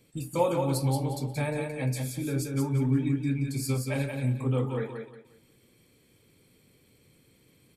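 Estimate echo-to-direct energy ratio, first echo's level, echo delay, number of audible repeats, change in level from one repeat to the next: -4.5 dB, -5.0 dB, 178 ms, 3, -11.0 dB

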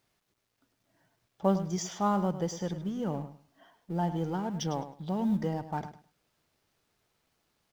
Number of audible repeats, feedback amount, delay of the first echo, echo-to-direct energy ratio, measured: 2, 20%, 104 ms, -12.0 dB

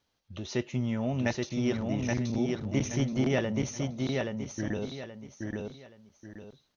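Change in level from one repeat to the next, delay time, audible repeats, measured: -10.0 dB, 826 ms, 3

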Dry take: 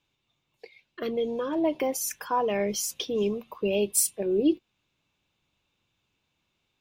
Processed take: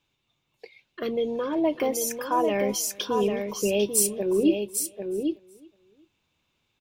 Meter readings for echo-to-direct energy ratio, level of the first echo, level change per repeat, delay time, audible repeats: -6.0 dB, -24.0 dB, no regular repeats, 369 ms, 4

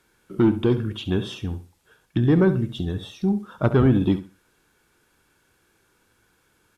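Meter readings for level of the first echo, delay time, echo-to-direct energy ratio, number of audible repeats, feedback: -13.0 dB, 68 ms, -13.0 dB, 2, 23%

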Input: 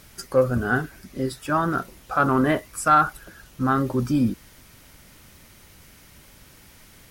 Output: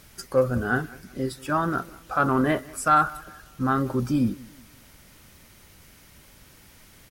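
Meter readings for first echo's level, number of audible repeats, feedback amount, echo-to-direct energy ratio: -22.0 dB, 2, 36%, -21.5 dB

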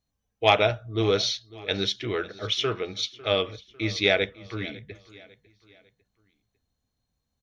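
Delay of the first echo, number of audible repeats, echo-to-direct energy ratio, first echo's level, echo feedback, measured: 550 ms, 2, -19.5 dB, -20.5 dB, 41%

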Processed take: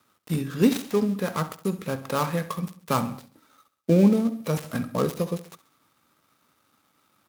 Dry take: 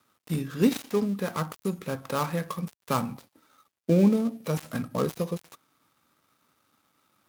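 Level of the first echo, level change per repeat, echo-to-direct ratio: -16.0 dB, -5.5 dB, -14.5 dB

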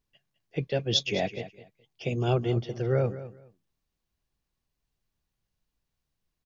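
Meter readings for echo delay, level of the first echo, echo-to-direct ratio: 209 ms, -14.5 dB, -14.5 dB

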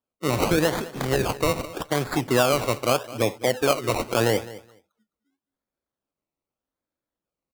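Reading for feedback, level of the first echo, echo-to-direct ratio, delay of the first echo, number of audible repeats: 16%, -17.5 dB, -17.5 dB, 210 ms, 2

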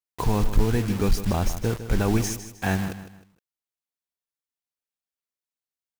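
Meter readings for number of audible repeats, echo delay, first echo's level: 3, 155 ms, -12.0 dB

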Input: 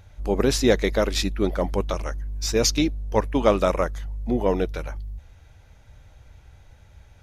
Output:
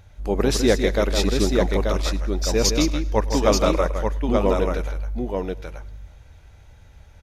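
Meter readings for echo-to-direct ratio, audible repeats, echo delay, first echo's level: -2.5 dB, 8, 102 ms, -23.0 dB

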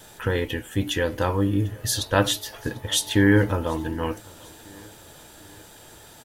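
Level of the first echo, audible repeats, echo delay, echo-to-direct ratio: -24.0 dB, 2, 746 ms, -23.0 dB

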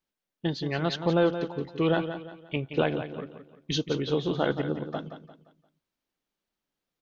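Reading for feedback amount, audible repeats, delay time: 37%, 3, 174 ms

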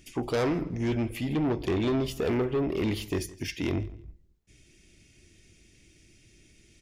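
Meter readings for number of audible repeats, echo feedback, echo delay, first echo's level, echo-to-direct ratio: 2, 21%, 164 ms, -21.0 dB, -21.0 dB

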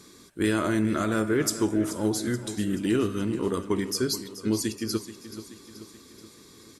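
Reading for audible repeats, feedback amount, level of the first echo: 5, 54%, -13.5 dB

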